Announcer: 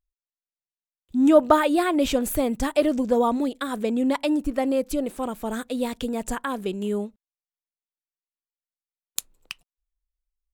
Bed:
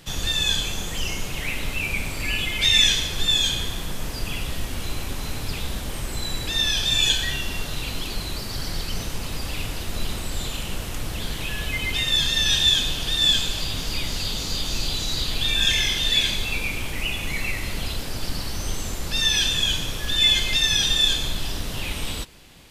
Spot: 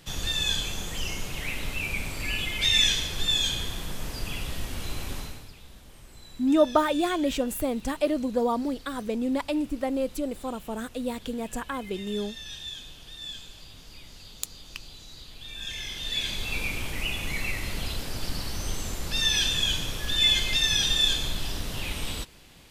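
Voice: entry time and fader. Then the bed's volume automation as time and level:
5.25 s, -4.5 dB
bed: 5.18 s -4.5 dB
5.54 s -20 dB
15.38 s -20 dB
16.60 s -3.5 dB

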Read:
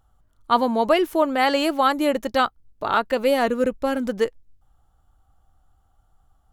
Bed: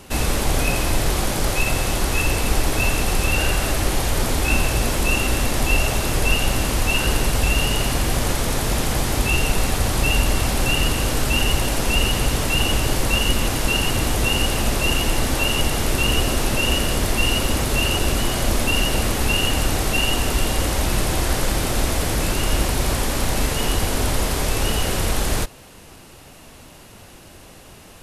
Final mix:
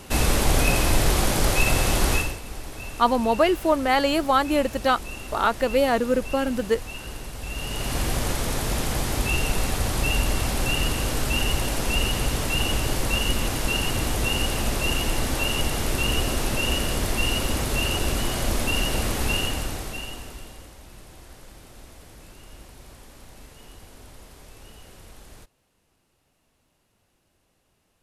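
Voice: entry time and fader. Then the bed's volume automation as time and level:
2.50 s, -1.0 dB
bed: 2.14 s 0 dB
2.40 s -16.5 dB
7.37 s -16.5 dB
7.99 s -4.5 dB
19.35 s -4.5 dB
20.77 s -25.5 dB

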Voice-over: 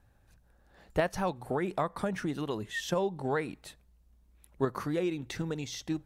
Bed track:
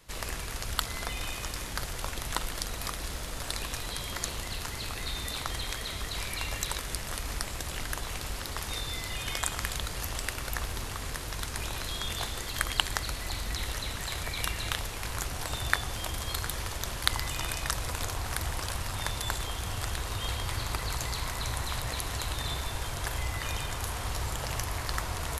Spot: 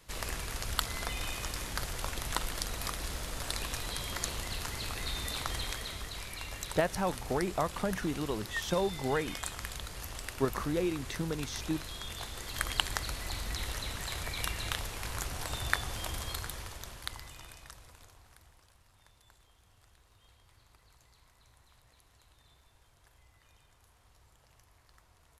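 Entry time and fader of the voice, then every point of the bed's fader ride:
5.80 s, -0.5 dB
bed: 5.62 s -1.5 dB
6.23 s -7.5 dB
12.25 s -7.5 dB
12.67 s -3 dB
16.17 s -3 dB
18.72 s -30.5 dB

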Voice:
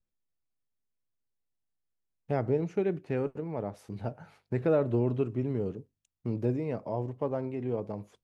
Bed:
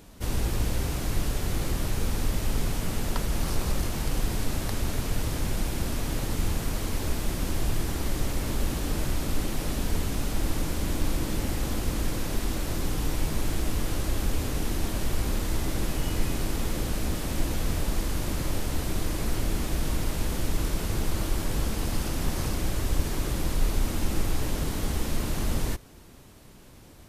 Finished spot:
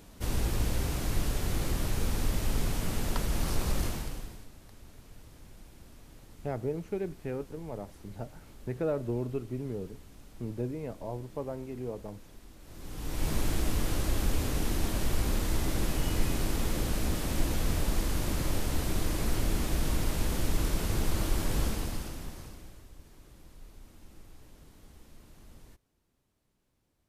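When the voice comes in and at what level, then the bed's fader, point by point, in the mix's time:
4.15 s, -5.0 dB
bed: 3.88 s -2.5 dB
4.51 s -23.5 dB
12.58 s -23.5 dB
13.29 s -1.5 dB
21.66 s -1.5 dB
22.92 s -26 dB

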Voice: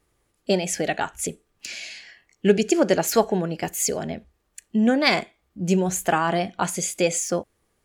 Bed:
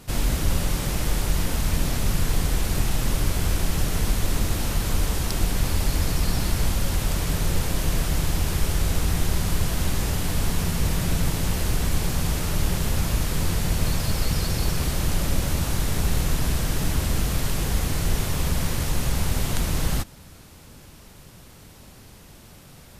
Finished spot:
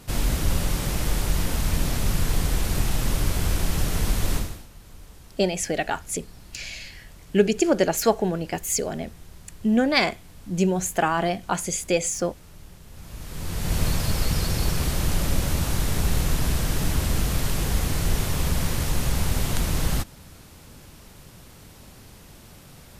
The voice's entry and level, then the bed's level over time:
4.90 s, -1.0 dB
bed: 4.36 s -0.5 dB
4.68 s -22.5 dB
12.86 s -22.5 dB
13.76 s 0 dB

